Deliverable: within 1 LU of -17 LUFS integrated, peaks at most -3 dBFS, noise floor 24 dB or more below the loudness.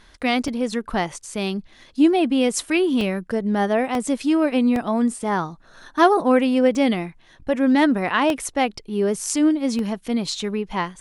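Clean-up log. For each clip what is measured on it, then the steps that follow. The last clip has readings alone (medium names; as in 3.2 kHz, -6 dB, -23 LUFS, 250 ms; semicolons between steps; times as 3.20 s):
dropouts 7; longest dropout 1.3 ms; loudness -21.0 LUFS; peak level -4.5 dBFS; loudness target -17.0 LUFS
-> interpolate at 0.48/3.01/3.95/4.76/6.75/8.30/9.79 s, 1.3 ms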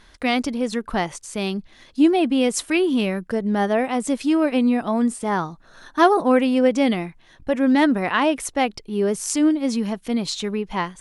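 dropouts 0; loudness -21.0 LUFS; peak level -4.5 dBFS; loudness target -17.0 LUFS
-> trim +4 dB; peak limiter -3 dBFS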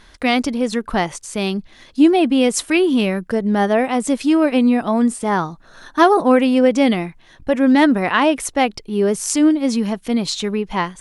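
loudness -17.0 LUFS; peak level -3.0 dBFS; noise floor -48 dBFS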